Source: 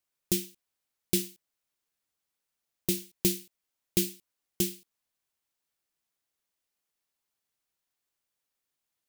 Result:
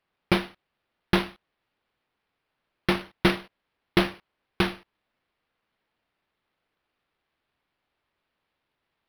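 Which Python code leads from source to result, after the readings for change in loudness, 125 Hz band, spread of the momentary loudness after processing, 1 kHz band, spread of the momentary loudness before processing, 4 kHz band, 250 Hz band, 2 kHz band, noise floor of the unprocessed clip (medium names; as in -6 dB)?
+3.5 dB, +6.5 dB, 10 LU, +27.5 dB, 10 LU, +6.0 dB, +6.5 dB, +17.5 dB, -85 dBFS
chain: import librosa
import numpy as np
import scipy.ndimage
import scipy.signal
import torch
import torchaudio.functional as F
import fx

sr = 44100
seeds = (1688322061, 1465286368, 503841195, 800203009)

y = np.interp(np.arange(len(x)), np.arange(len(x))[::6], x[::6])
y = y * 10.0 ** (6.0 / 20.0)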